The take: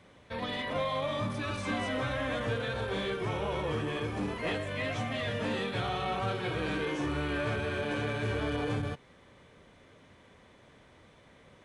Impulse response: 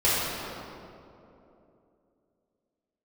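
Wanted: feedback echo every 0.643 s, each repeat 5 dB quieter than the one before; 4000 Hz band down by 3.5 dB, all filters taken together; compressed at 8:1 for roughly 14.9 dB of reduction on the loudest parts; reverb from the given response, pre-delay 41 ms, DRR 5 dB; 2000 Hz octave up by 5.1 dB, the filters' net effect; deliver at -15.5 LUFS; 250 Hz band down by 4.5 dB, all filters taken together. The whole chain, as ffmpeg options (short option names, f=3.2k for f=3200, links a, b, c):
-filter_complex "[0:a]equalizer=f=250:t=o:g=-6,equalizer=f=2k:t=o:g=8.5,equalizer=f=4k:t=o:g=-9,acompressor=threshold=-44dB:ratio=8,aecho=1:1:643|1286|1929|2572|3215|3858|4501:0.562|0.315|0.176|0.0988|0.0553|0.031|0.0173,asplit=2[a][b];[1:a]atrim=start_sample=2205,adelay=41[c];[b][c]afir=irnorm=-1:irlink=0,volume=-21.5dB[d];[a][d]amix=inputs=2:normalize=0,volume=28.5dB"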